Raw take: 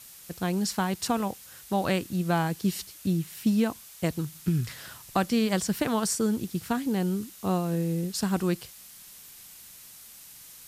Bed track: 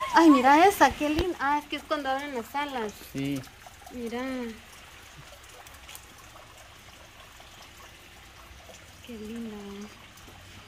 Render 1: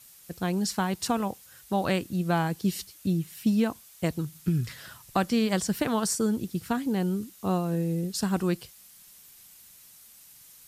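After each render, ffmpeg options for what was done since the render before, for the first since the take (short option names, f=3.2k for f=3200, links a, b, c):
-af "afftdn=nr=6:nf=-49"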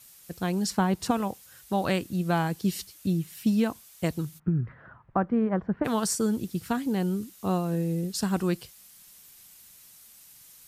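-filter_complex "[0:a]asettb=1/sr,asplit=3[a][b][c];[a]atrim=end=0.704[d];[b]atrim=start=0.7:end=1.11,asetpts=PTS-STARTPTS,afade=t=in:d=0.004:c=qsin,afade=t=out:st=0.406:d=0.004:c=qsin,tiltshelf=f=1.5k:g=4.5[e];[c]atrim=start=1.106[f];[d][e]acrossfade=d=0.004:c1=hsin:c2=qsin[g];[g][f]acrossfade=d=0.004:c1=qsin:c2=hsin,asplit=3[h][i][j];[h]afade=t=out:st=4.38:d=0.02[k];[i]lowpass=f=1.5k:w=0.5412,lowpass=f=1.5k:w=1.3066,afade=t=in:st=4.38:d=0.02,afade=t=out:st=5.84:d=0.02[l];[j]afade=t=in:st=5.84:d=0.02[m];[k][l][m]amix=inputs=3:normalize=0"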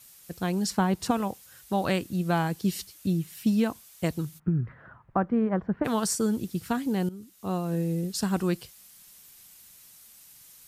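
-filter_complex "[0:a]asplit=2[a][b];[a]atrim=end=7.09,asetpts=PTS-STARTPTS,afade=t=out:st=7.086:d=0.004:c=hsin:silence=0.16788[c];[b]atrim=start=7.09,asetpts=PTS-STARTPTS,afade=t=in:d=0.69:silence=0.16788[d];[c][d]concat=n=2:v=0:a=1"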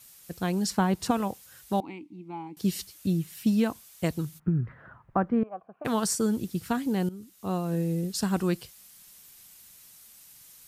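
-filter_complex "[0:a]asettb=1/sr,asplit=3[a][b][c];[a]atrim=end=1.804[d];[b]atrim=start=1.8:end=2.57,asetpts=PTS-STARTPTS,afade=t=in:d=0.004:c=qsin,afade=t=out:st=0.766:d=0.004:c=qsin,asplit=3[e][f][g];[e]bandpass=f=300:t=q:w=8,volume=0dB[h];[f]bandpass=f=870:t=q:w=8,volume=-6dB[i];[g]bandpass=f=2.24k:t=q:w=8,volume=-9dB[j];[h][i][j]amix=inputs=3:normalize=0[k];[c]atrim=start=2.566[l];[d][k]acrossfade=d=0.004:c1=hsin:c2=qsin[m];[m][l]acrossfade=d=0.004:c1=qsin:c2=hsin,asettb=1/sr,asplit=3[n][o][p];[n]atrim=end=5.434[q];[o]atrim=start=5.43:end=5.85,asetpts=PTS-STARTPTS,afade=t=in:d=0.004:c=qsin,afade=t=out:st=0.416:d=0.004:c=qsin,asplit=3[r][s][t];[r]bandpass=f=730:t=q:w=8,volume=0dB[u];[s]bandpass=f=1.09k:t=q:w=8,volume=-6dB[v];[t]bandpass=f=2.44k:t=q:w=8,volume=-9dB[w];[u][v][w]amix=inputs=3:normalize=0[x];[p]atrim=start=5.846[y];[q][x]acrossfade=d=0.004:c1=hsin:c2=qsin[z];[z][y]acrossfade=d=0.004:c1=qsin:c2=hsin"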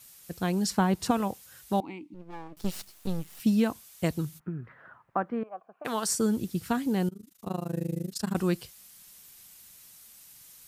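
-filter_complex "[0:a]asettb=1/sr,asplit=3[a][b][c];[a]atrim=end=2.144[d];[b]atrim=start=2.14:end=3.4,asetpts=PTS-STARTPTS,afade=t=in:d=0.004:c=qsin,afade=t=out:st=1.256:d=0.004:c=qsin,aeval=exprs='max(val(0),0)':c=same[e];[c]atrim=start=3.396[f];[d][e]acrossfade=d=0.004:c1=hsin:c2=qsin[g];[g][f]acrossfade=d=0.004:c1=qsin:c2=hsin,asettb=1/sr,asplit=3[h][i][j];[h]atrim=end=4.414[k];[i]atrim=start=4.41:end=6.09,asetpts=PTS-STARTPTS,afade=t=in:d=0.004:c=qsin,afade=t=out:st=1.676:d=0.004:c=qsin,highpass=f=520:p=1[l];[j]atrim=start=6.086[m];[k][l]acrossfade=d=0.004:c1=hsin:c2=qsin[n];[n][m]acrossfade=d=0.004:c1=qsin:c2=hsin,asettb=1/sr,asplit=3[o][p][q];[o]atrim=end=7.094[r];[p]atrim=start=7.09:end=8.35,asetpts=PTS-STARTPTS,afade=t=in:d=0.004:c=qsin,afade=t=out:st=1.256:d=0.004:c=qsin,tremolo=f=26:d=0.974[s];[q]atrim=start=8.346[t];[r][s]acrossfade=d=0.004:c1=hsin:c2=qsin[u];[u][t]acrossfade=d=0.004:c1=qsin:c2=hsin"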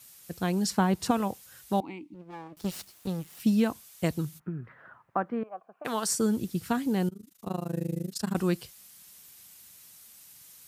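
-af "highpass=55"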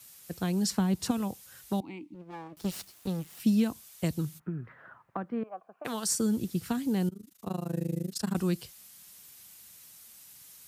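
-filter_complex "[0:a]acrossover=split=300|3000[a][b][c];[b]acompressor=threshold=-35dB:ratio=6[d];[a][d][c]amix=inputs=3:normalize=0"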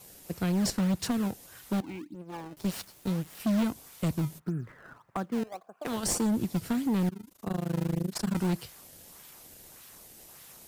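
-filter_complex "[0:a]asplit=2[a][b];[b]acrusher=samples=22:mix=1:aa=0.000001:lfo=1:lforange=35.2:lforate=1.7,volume=-6.5dB[c];[a][c]amix=inputs=2:normalize=0,asoftclip=type=hard:threshold=-23.5dB"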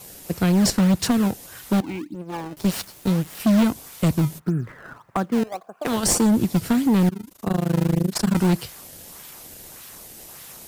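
-af "volume=9.5dB"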